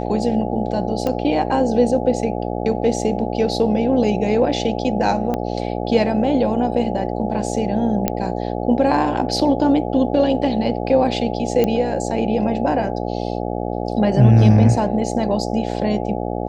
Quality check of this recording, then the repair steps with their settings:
buzz 60 Hz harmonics 14 -24 dBFS
1.07 s: pop -10 dBFS
5.34 s: pop -11 dBFS
8.08 s: pop -4 dBFS
11.64 s: pop -7 dBFS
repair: de-click; de-hum 60 Hz, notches 14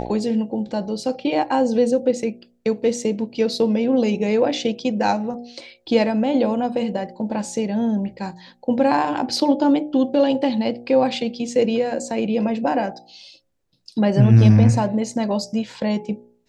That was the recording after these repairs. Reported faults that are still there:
5.34 s: pop

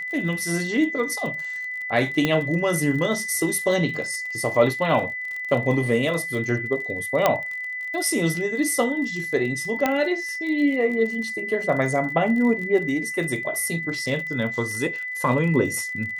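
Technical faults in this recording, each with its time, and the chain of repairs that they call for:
crackle 38 per s -31 dBFS
whine 2 kHz -28 dBFS
2.25 s: pop -8 dBFS
7.26 s: pop -4 dBFS
9.86 s: pop -7 dBFS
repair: de-click; band-stop 2 kHz, Q 30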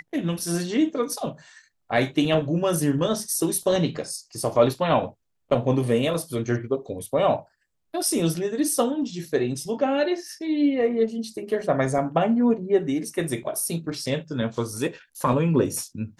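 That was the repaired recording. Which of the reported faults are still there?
nothing left

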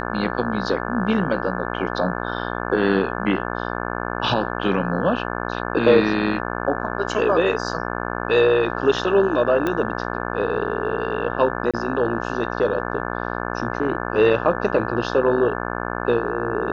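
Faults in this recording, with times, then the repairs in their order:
buzz 60 Hz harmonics 29 -27 dBFS
9.67 s: pop -11 dBFS
11.71–11.74 s: dropout 26 ms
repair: de-click; de-hum 60 Hz, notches 29; interpolate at 11.71 s, 26 ms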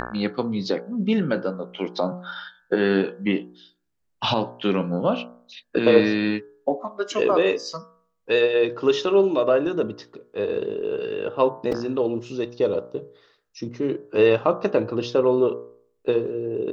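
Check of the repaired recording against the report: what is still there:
nothing left

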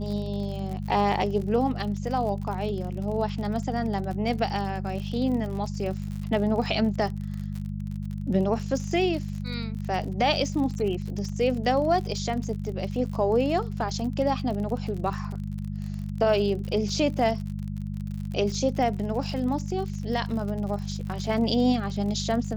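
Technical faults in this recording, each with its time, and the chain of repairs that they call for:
crackle 52 per s -33 dBFS
hum 50 Hz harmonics 4 -32 dBFS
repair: de-click; de-hum 50 Hz, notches 4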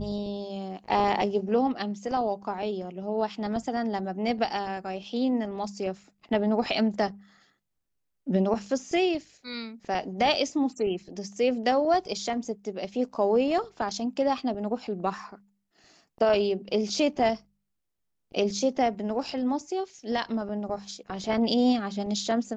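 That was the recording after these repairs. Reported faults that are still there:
nothing left

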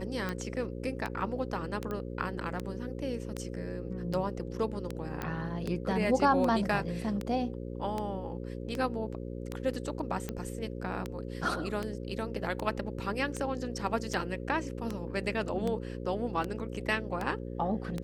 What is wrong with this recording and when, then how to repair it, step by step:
buzz 60 Hz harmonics 9 -39 dBFS
tick 78 rpm -20 dBFS
1.91 s: pop -24 dBFS
5.22 s: pop -20 dBFS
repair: de-click; de-hum 60 Hz, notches 9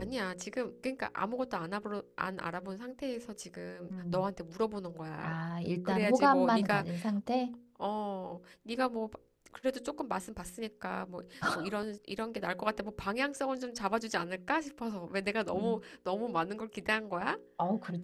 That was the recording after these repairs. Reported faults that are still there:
nothing left

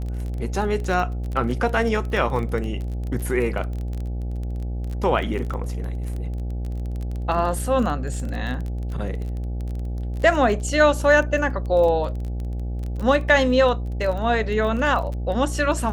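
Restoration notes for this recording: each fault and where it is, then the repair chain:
buzz 60 Hz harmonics 14 -27 dBFS
crackle 21 per s -28 dBFS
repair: de-click; de-hum 60 Hz, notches 14

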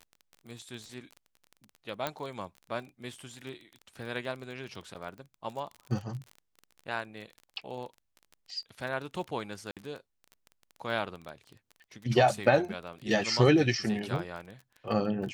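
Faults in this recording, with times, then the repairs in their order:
crackle 24 per s -38 dBFS
2.07 s: pop -16 dBFS
4.94–4.95 s: dropout 8.5 ms
9.71–9.77 s: dropout 57 ms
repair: de-click; interpolate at 4.94 s, 8.5 ms; interpolate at 9.71 s, 57 ms

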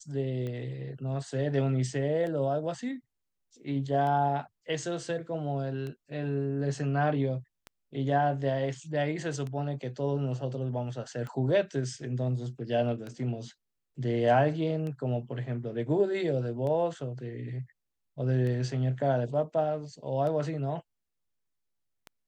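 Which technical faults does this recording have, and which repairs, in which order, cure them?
tick 33 1/3 rpm -26 dBFS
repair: de-click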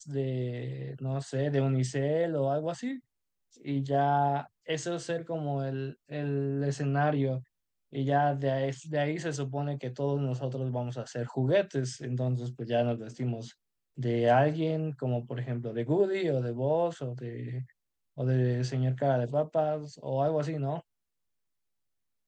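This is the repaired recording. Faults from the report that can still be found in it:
nothing left

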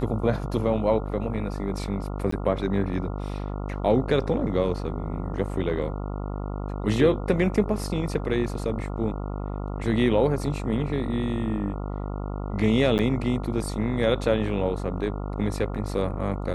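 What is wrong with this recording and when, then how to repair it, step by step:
buzz 50 Hz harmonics 28 -31 dBFS
2.31–2.32 s: dropout 14 ms
12.98–12.99 s: dropout 9.2 ms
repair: de-hum 50 Hz, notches 28; interpolate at 2.31 s, 14 ms; interpolate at 12.98 s, 9.2 ms

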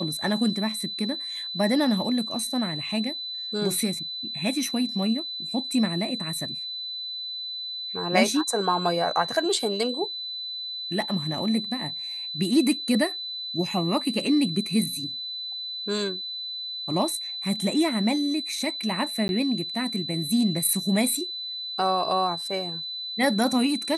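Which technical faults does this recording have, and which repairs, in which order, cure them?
whine 4 kHz -31 dBFS
19.28–19.29 s: dropout 11 ms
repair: band-stop 4 kHz, Q 30; interpolate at 19.28 s, 11 ms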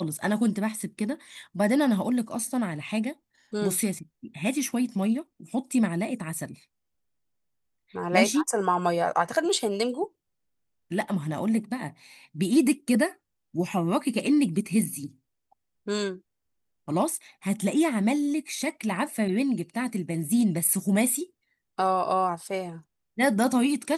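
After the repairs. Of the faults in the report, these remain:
nothing left

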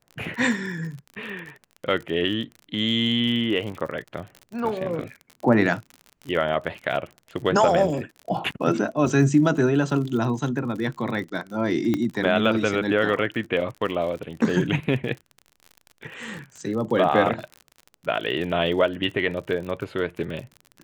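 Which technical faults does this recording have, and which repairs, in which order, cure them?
crackle 47 per s -32 dBFS
11.94 s: pop -12 dBFS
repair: de-click

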